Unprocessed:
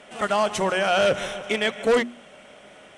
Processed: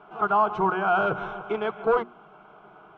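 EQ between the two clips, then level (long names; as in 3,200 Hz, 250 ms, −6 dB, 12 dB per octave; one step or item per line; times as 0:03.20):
low-pass with resonance 1,500 Hz, resonance Q 2.6
high-frequency loss of the air 110 metres
phaser with its sweep stopped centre 370 Hz, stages 8
+1.0 dB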